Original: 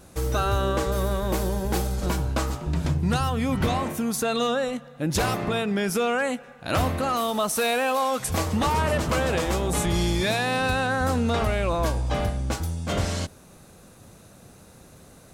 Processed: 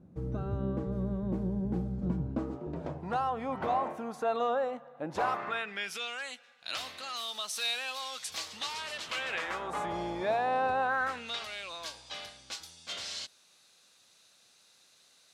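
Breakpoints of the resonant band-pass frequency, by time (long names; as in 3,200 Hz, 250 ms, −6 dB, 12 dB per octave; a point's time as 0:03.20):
resonant band-pass, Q 1.7
0:02.17 180 Hz
0:03.07 790 Hz
0:05.15 790 Hz
0:06.09 4,100 Hz
0:08.96 4,100 Hz
0:09.99 750 Hz
0:10.78 750 Hz
0:11.39 4,100 Hz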